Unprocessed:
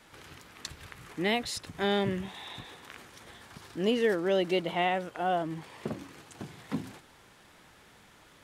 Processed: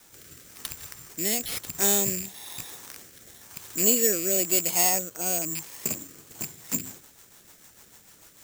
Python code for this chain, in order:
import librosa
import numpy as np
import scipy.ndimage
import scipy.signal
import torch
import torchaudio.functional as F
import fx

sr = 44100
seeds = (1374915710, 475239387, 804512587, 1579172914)

y = fx.rattle_buzz(x, sr, strikes_db=-39.0, level_db=-27.0)
y = (np.kron(y[::6], np.eye(6)[0]) * 6)[:len(y)]
y = fx.rotary_switch(y, sr, hz=1.0, then_hz=6.7, switch_at_s=6.09)